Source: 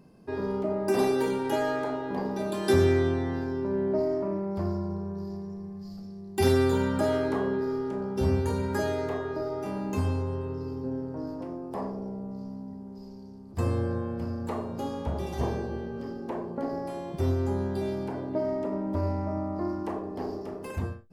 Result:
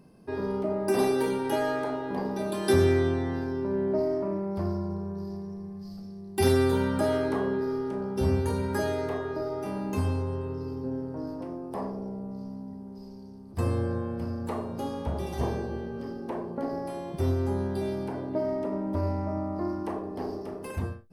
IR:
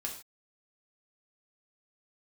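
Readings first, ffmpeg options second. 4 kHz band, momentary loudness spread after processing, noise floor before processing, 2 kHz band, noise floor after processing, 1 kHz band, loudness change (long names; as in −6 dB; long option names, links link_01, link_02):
+0.5 dB, 12 LU, −43 dBFS, 0.0 dB, −43 dBFS, 0.0 dB, 0.0 dB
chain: -af "equalizer=frequency=9900:width=1.3:gain=4.5,bandreject=frequency=7100:width=6"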